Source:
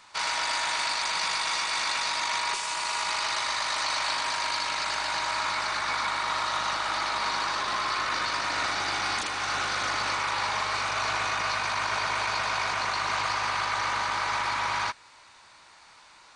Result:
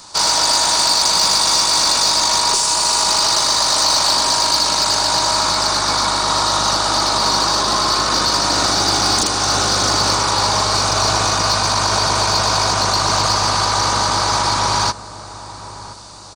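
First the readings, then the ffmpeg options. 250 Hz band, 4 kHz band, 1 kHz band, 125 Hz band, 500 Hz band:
+19.0 dB, +15.5 dB, +10.5 dB, +20.5 dB, +15.0 dB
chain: -filter_complex "[0:a]firequalizer=gain_entry='entry(260,0);entry(2100,-23);entry(4700,-4)':delay=0.05:min_phase=1,asplit=2[link_01][link_02];[link_02]adelay=1019,lowpass=frequency=1100:poles=1,volume=-14.5dB,asplit=2[link_03][link_04];[link_04]adelay=1019,lowpass=frequency=1100:poles=1,volume=0.48,asplit=2[link_05][link_06];[link_06]adelay=1019,lowpass=frequency=1100:poles=1,volume=0.48,asplit=2[link_07][link_08];[link_08]adelay=1019,lowpass=frequency=1100:poles=1,volume=0.48[link_09];[link_01][link_03][link_05][link_07][link_09]amix=inputs=5:normalize=0,apsyclip=26dB,acrossover=split=1400[link_10][link_11];[link_11]acontrast=29[link_12];[link_10][link_12]amix=inputs=2:normalize=0,volume=-7dB"

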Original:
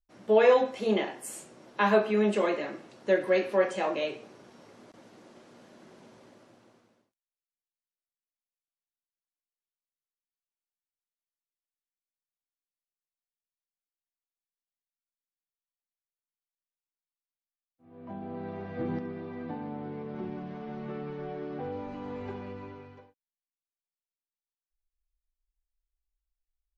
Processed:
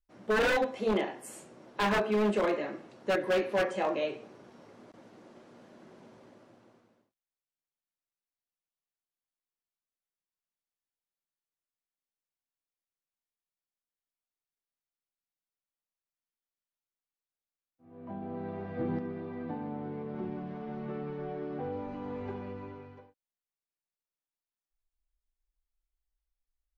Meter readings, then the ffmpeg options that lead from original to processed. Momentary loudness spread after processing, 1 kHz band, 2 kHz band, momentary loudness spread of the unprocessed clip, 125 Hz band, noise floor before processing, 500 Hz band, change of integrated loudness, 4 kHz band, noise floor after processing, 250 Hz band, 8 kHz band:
17 LU, −2.0 dB, 0.0 dB, 17 LU, −0.5 dB, below −85 dBFS, −4.5 dB, −3.0 dB, +0.5 dB, below −85 dBFS, −1.5 dB, can't be measured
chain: -af "highshelf=frequency=2600:gain=-7,aeval=exprs='0.0891*(abs(mod(val(0)/0.0891+3,4)-2)-1)':channel_layout=same"

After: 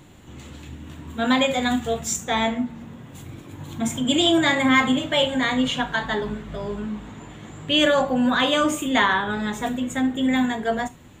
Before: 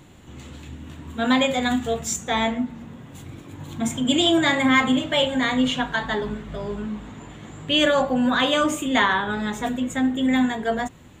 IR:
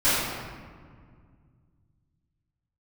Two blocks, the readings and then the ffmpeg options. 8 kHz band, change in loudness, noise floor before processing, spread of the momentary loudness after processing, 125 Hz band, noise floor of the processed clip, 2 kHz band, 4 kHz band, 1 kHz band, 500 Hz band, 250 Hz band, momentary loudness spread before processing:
+0.5 dB, 0.0 dB, −46 dBFS, 22 LU, 0.0 dB, −45 dBFS, +0.5 dB, +0.5 dB, +0.5 dB, 0.0 dB, −0.5 dB, 22 LU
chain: -filter_complex "[0:a]asplit=2[link_01][link_02];[link_02]aemphasis=mode=production:type=75fm[link_03];[1:a]atrim=start_sample=2205,atrim=end_sample=3528[link_04];[link_03][link_04]afir=irnorm=-1:irlink=0,volume=-33dB[link_05];[link_01][link_05]amix=inputs=2:normalize=0"

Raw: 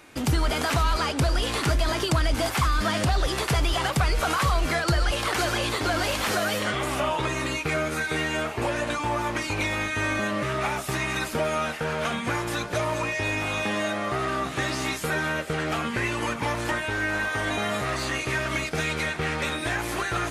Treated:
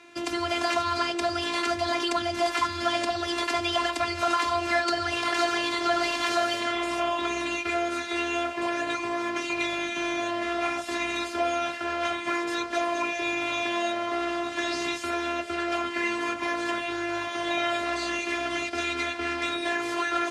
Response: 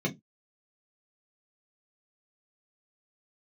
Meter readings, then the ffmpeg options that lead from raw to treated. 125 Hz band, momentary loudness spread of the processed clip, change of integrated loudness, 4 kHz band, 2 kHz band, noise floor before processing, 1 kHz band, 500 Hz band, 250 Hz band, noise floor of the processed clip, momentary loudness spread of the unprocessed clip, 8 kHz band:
−19.0 dB, 4 LU, −1.5 dB, −0.5 dB, −2.0 dB, −33 dBFS, +0.5 dB, −0.5 dB, −0.5 dB, −35 dBFS, 4 LU, −5.0 dB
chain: -filter_complex "[0:a]lowpass=6000,afftfilt=real='hypot(re,im)*cos(PI*b)':imag='0':win_size=512:overlap=0.75,highpass=frequency=71:width=0.5412,highpass=frequency=71:width=1.3066,bandreject=frequency=60:width_type=h:width=6,bandreject=frequency=120:width_type=h:width=6,bandreject=frequency=180:width_type=h:width=6,bandreject=frequency=240:width_type=h:width=6,bandreject=frequency=300:width_type=h:width=6,bandreject=frequency=360:width_type=h:width=6,bandreject=frequency=420:width_type=h:width=6,bandreject=frequency=480:width_type=h:width=6,acrossover=split=420|560|3200[link_01][link_02][link_03][link_04];[link_01]alimiter=level_in=10.5dB:limit=-24dB:level=0:latency=1,volume=-10.5dB[link_05];[link_05][link_02][link_03][link_04]amix=inputs=4:normalize=0,volume=3.5dB"

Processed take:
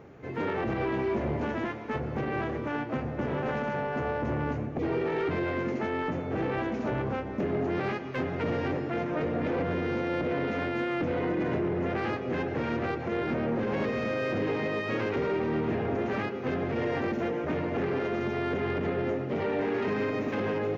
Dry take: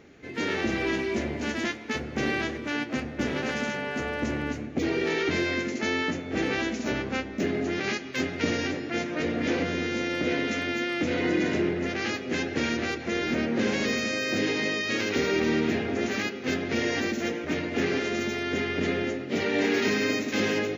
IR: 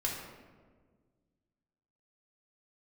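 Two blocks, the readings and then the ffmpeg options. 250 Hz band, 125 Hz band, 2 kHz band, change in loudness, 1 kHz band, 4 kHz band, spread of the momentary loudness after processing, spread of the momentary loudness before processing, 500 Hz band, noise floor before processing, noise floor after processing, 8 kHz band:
−3.0 dB, +2.5 dB, −7.0 dB, −2.5 dB, +2.0 dB, −13.0 dB, 3 LU, 5 LU, 0.0 dB, −38 dBFS, −36 dBFS, below −20 dB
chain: -filter_complex "[0:a]acrossover=split=4400[link_01][link_02];[link_02]acompressor=threshold=-57dB:ratio=4:attack=1:release=60[link_03];[link_01][link_03]amix=inputs=2:normalize=0,equalizer=frequency=125:width_type=o:width=1:gain=10,equalizer=frequency=250:width_type=o:width=1:gain=-3,equalizer=frequency=500:width_type=o:width=1:gain=4,equalizer=frequency=1000:width_type=o:width=1:gain=8,equalizer=frequency=2000:width_type=o:width=1:gain=-4,equalizer=frequency=4000:width_type=o:width=1:gain=-7,equalizer=frequency=8000:width_type=o:width=1:gain=-10,alimiter=limit=-19dB:level=0:latency=1:release=108,asoftclip=type=tanh:threshold=-21dB"

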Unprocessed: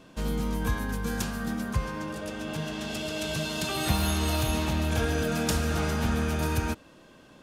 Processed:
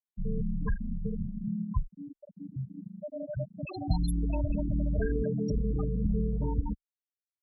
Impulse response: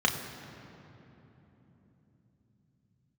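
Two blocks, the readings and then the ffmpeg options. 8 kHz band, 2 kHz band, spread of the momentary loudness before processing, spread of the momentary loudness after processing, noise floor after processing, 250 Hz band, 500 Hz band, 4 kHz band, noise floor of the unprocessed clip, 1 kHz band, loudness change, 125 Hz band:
−22.0 dB, −16.5 dB, 7 LU, 12 LU, below −85 dBFS, −2.5 dB, −4.5 dB, −21.0 dB, −54 dBFS, −13.0 dB, −3.5 dB, −2.5 dB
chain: -af "afftfilt=real='re*gte(hypot(re,im),0.141)':imag='im*gte(hypot(re,im),0.141)':win_size=1024:overlap=0.75,afreqshift=-24" -ar 44100 -c:a aac -b:a 96k

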